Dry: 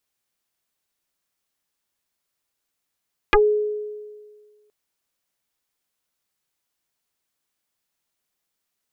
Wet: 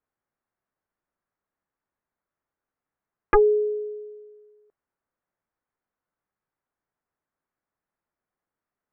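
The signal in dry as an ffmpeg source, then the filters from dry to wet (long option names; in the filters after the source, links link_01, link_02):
-f lavfi -i "aevalsrc='0.316*pow(10,-3*t/1.68)*sin(2*PI*421*t+7.6*pow(10,-3*t/0.1)*sin(2*PI*0.97*421*t))':duration=1.37:sample_rate=44100"
-af "lowpass=frequency=1700:width=0.5412,lowpass=frequency=1700:width=1.3066"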